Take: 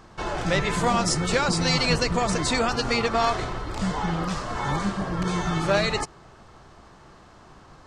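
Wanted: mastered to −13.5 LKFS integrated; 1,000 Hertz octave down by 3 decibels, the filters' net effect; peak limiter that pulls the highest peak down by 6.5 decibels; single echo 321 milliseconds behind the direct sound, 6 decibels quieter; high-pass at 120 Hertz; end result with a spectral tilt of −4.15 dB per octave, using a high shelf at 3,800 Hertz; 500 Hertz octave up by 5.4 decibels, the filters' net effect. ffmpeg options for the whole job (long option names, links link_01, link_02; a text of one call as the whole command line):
ffmpeg -i in.wav -af "highpass=120,equalizer=frequency=500:width_type=o:gain=8.5,equalizer=frequency=1000:width_type=o:gain=-8,highshelf=frequency=3800:gain=3,alimiter=limit=-13dB:level=0:latency=1,aecho=1:1:321:0.501,volume=10dB" out.wav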